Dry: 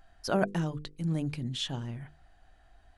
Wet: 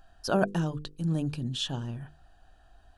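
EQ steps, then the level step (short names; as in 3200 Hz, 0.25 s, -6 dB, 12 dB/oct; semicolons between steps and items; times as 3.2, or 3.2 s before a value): Butterworth band-stop 2100 Hz, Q 3.4; +2.0 dB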